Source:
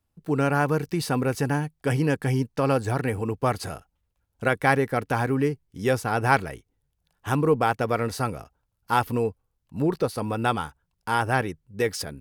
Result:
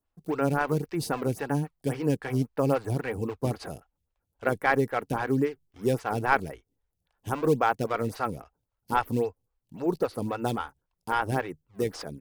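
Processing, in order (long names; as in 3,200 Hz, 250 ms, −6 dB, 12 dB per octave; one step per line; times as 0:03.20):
in parallel at −11.5 dB: sample-and-hold swept by an LFO 29×, swing 160% 1.8 Hz
on the sum: phaser with staggered stages 3.7 Hz
level −2 dB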